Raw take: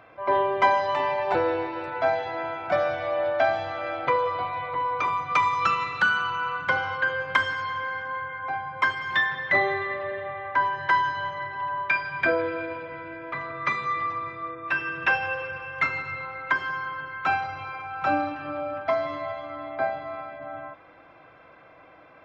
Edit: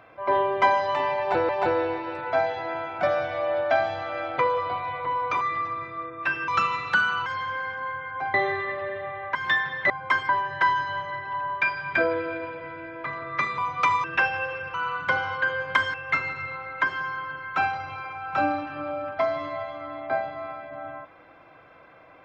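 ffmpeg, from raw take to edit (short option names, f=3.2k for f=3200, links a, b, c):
-filter_complex "[0:a]asplit=13[a][b][c][d][e][f][g][h][i][j][k][l][m];[a]atrim=end=1.492[n];[b]atrim=start=1.178:end=5.102[o];[c]atrim=start=13.858:end=14.932[p];[d]atrim=start=5.558:end=6.342[q];[e]atrim=start=7.538:end=8.622[r];[f]atrim=start=9.558:end=10.572[s];[g]atrim=start=9.008:end=9.562[t];[h]atrim=start=8.618:end=9.012[u];[i]atrim=start=10.568:end=13.862[v];[j]atrim=start=5.098:end=5.562[w];[k]atrim=start=14.928:end=15.632[x];[l]atrim=start=6.338:end=7.542[y];[m]atrim=start=15.628[z];[n][o]acrossfade=d=0.004:c1=hsin:c2=hsin[aa];[aa][p]acrossfade=d=0.004:c1=hsin:c2=hsin[ab];[ab][q]acrossfade=d=0.004:c1=hsin:c2=hsin[ac];[ac][r]acrossfade=d=0.004:c1=hsin:c2=hsin[ad];[ad][s]acrossfade=d=0.004:c1=hsin:c2=hsin[ae];[ae][t]acrossfade=d=0.004:c1=hsin:c2=hsin[af];[af][u]acrossfade=d=0.004:c1=hsin:c2=hsin[ag];[ag][v]acrossfade=d=0.004:c1=hsin:c2=hsin[ah];[ah][w]acrossfade=d=0.004:c1=hsin:c2=hsin[ai];[ai][x]acrossfade=d=0.004:c1=hsin:c2=hsin[aj];[aj][y]acrossfade=d=0.004:c1=hsin:c2=hsin[ak];[ak][z]acrossfade=d=0.004:c1=hsin:c2=hsin"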